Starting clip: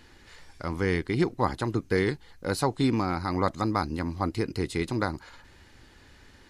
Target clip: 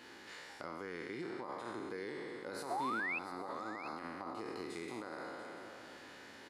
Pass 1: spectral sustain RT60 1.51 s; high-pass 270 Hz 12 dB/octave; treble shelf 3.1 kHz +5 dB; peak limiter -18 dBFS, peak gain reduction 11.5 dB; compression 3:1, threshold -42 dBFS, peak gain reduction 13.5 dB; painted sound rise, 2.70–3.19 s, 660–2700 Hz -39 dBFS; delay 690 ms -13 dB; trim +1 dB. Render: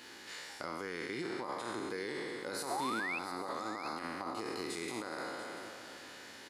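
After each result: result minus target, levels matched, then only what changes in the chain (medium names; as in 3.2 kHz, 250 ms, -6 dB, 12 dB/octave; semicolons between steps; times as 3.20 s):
8 kHz band +7.0 dB; compression: peak gain reduction -4.5 dB
change: treble shelf 3.1 kHz -4.5 dB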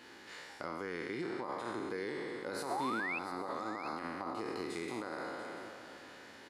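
compression: peak gain reduction -4 dB
change: compression 3:1, threshold -48 dBFS, peak gain reduction 18 dB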